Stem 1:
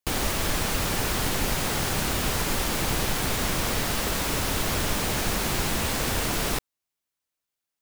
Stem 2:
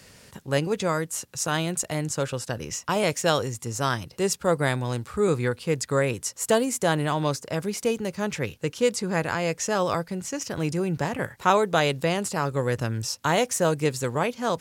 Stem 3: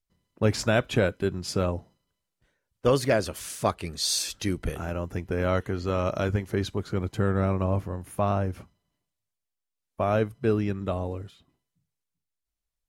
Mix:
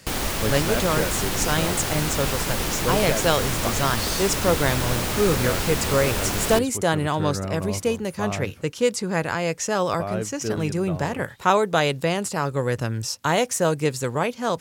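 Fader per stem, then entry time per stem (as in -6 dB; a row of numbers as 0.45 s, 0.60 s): +0.5 dB, +1.5 dB, -4.5 dB; 0.00 s, 0.00 s, 0.00 s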